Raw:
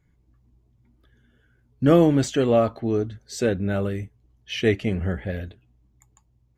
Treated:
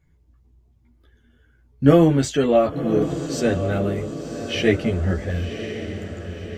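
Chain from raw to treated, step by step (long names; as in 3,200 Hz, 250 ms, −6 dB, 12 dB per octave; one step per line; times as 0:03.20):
multi-voice chorus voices 4, 0.81 Hz, delay 13 ms, depth 1.6 ms
on a send: feedback delay with all-pass diffusion 1,062 ms, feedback 50%, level −9.5 dB
on the sum: level +5 dB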